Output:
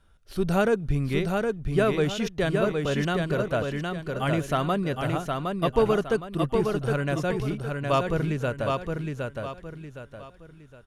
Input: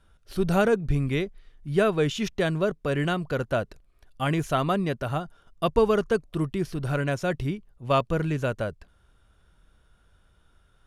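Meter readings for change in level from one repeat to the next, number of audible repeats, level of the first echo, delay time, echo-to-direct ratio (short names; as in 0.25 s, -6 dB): -9.0 dB, 4, -4.0 dB, 0.764 s, -3.5 dB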